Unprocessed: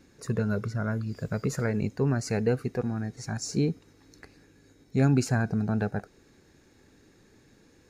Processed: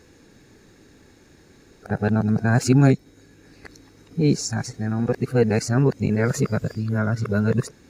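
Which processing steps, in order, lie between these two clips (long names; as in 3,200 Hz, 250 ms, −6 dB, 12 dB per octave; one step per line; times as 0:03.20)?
played backwards from end to start
level +7 dB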